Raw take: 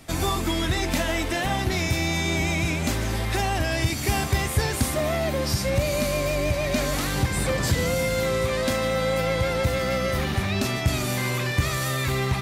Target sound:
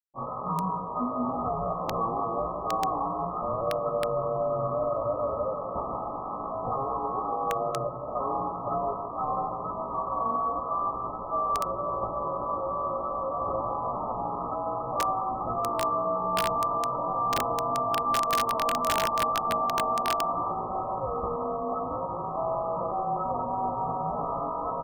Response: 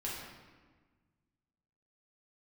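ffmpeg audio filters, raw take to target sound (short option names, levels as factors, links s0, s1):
-filter_complex "[0:a]aeval=exprs='sgn(val(0))*max(abs(val(0))-0.0119,0)':c=same,highpass=f=74:w=0.5412,highpass=f=74:w=1.3066,asplit=2[s0][s1];[s1]aecho=0:1:83|166|249:0.398|0.0916|0.0211[s2];[s0][s2]amix=inputs=2:normalize=0,afreqshift=-150,aemphasis=mode=production:type=riaa,lowpass=f=3300:t=q:w=0.5098,lowpass=f=3300:t=q:w=0.6013,lowpass=f=3300:t=q:w=0.9,lowpass=f=3300:t=q:w=2.563,afreqshift=-3900,asetrate=29433,aresample=44100,atempo=1.49831,bandreject=f=50:t=h:w=6,bandreject=f=100:t=h:w=6,bandreject=f=150:t=h:w=6,bandreject=f=200:t=h:w=6,bandreject=f=250:t=h:w=6,bandreject=f=300:t=h:w=6,bandreject=f=350:t=h:w=6,bandreject=f=400:t=h:w=6,bandreject=f=450:t=h:w=6,asetrate=22050,aresample=44100,equalizer=f=360:t=o:w=1.1:g=-4.5,asplit=2[s3][s4];[s4]adelay=17,volume=0.562[s5];[s3][s5]amix=inputs=2:normalize=0,aeval=exprs='(mod(7.94*val(0)+1,2)-1)/7.94':c=same"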